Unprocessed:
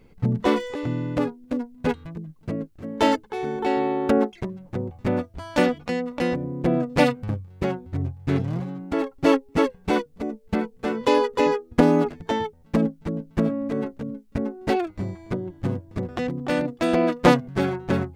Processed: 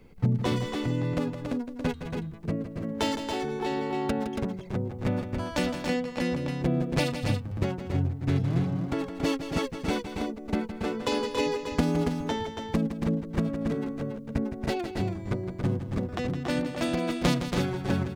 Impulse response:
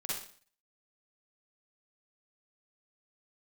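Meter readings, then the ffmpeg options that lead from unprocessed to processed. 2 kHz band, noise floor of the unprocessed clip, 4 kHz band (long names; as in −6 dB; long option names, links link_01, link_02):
−5.5 dB, −53 dBFS, −1.0 dB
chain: -filter_complex "[0:a]acrossover=split=170|3000[link_01][link_02][link_03];[link_02]acompressor=threshold=-31dB:ratio=3[link_04];[link_01][link_04][link_03]amix=inputs=3:normalize=0,asplit=2[link_05][link_06];[link_06]aecho=0:1:163.3|279.9:0.316|0.501[link_07];[link_05][link_07]amix=inputs=2:normalize=0"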